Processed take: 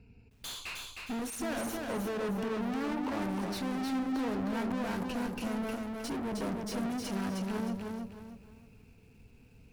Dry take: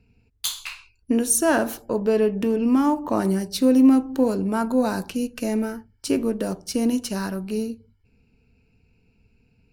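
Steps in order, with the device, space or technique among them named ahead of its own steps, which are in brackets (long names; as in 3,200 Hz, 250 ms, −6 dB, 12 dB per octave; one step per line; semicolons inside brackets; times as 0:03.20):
tube preamp driven hard (tube saturation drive 38 dB, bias 0.35; high-shelf EQ 3,600 Hz −8 dB)
feedback echo at a low word length 311 ms, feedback 35%, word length 12 bits, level −3.5 dB
level +4 dB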